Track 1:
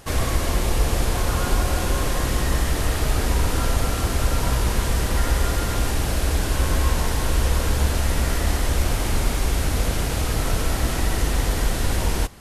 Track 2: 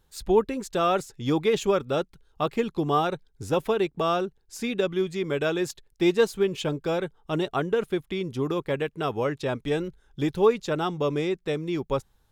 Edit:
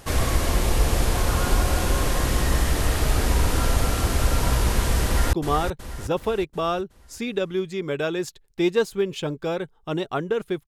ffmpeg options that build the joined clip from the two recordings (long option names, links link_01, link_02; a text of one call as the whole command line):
ffmpeg -i cue0.wav -i cue1.wav -filter_complex "[0:a]apad=whole_dur=10.67,atrim=end=10.67,atrim=end=5.332[link_01];[1:a]atrim=start=2.748:end=8.09[link_02];[link_01][link_02]acrossfade=duration=0.004:curve1=hsin:curve2=hsin,asplit=2[link_03][link_04];[link_04]afade=type=in:start_time=5.05:duration=0.01,afade=type=out:start_time=5.33:duration=0.01,aecho=0:1:370|740|1110|1480|1850|2220:0.398107|0.199054|0.0995268|0.0497634|0.0248817|0.0124408[link_05];[link_03][link_05]amix=inputs=2:normalize=0" out.wav